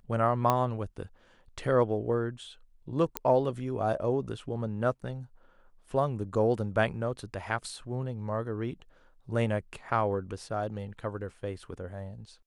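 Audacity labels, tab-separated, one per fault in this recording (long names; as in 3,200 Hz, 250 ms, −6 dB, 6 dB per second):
0.500000	0.500000	click −12 dBFS
3.170000	3.170000	click −11 dBFS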